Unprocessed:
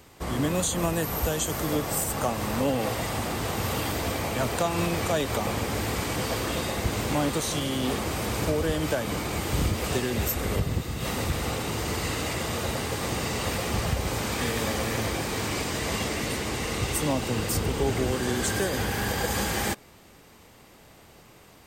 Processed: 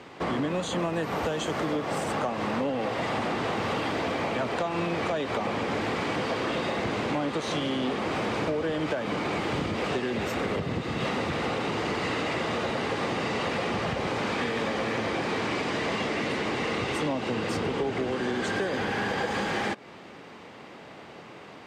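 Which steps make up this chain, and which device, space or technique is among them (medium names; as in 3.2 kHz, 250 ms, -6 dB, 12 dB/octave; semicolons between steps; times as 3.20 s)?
AM radio (band-pass 180–3200 Hz; compression, threshold -34 dBFS, peak gain reduction 12 dB; saturation -26.5 dBFS, distortion -25 dB); trim +9 dB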